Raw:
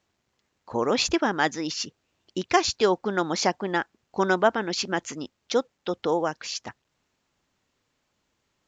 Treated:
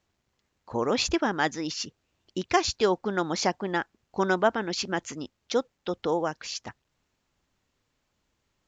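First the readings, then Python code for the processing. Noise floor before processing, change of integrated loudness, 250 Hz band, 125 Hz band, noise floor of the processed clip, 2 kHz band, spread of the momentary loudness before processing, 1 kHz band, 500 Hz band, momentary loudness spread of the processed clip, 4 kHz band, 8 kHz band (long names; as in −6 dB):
−76 dBFS, −2.0 dB, −1.5 dB, −0.5 dB, −77 dBFS, −2.5 dB, 12 LU, −2.5 dB, −2.0 dB, 12 LU, −2.5 dB, can't be measured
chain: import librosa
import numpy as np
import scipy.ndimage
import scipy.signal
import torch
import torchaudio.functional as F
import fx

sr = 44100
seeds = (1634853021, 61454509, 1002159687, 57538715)

y = fx.low_shelf(x, sr, hz=77.0, db=11.0)
y = F.gain(torch.from_numpy(y), -2.5).numpy()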